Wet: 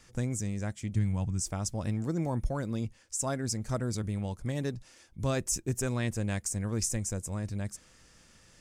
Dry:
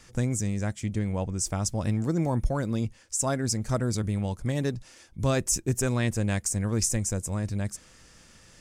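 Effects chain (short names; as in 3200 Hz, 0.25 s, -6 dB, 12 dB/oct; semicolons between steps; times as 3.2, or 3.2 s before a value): 0.95–1.4 graphic EQ 125/500/8000 Hz +10/-9/+5 dB; gain -5 dB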